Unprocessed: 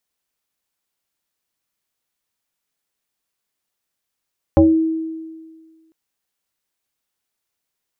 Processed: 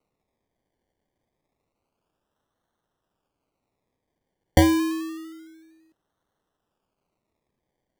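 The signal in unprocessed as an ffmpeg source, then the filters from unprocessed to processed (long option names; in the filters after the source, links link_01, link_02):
-f lavfi -i "aevalsrc='0.501*pow(10,-3*t/1.67)*sin(2*PI*322*t+1.7*pow(10,-3*t/0.31)*sin(2*PI*0.74*322*t))':duration=1.35:sample_rate=44100"
-filter_complex "[0:a]equalizer=frequency=380:width_type=o:width=0.91:gain=-6,acrossover=split=290[link_01][link_02];[link_02]acrusher=samples=26:mix=1:aa=0.000001:lfo=1:lforange=15.6:lforate=0.28[link_03];[link_01][link_03]amix=inputs=2:normalize=0"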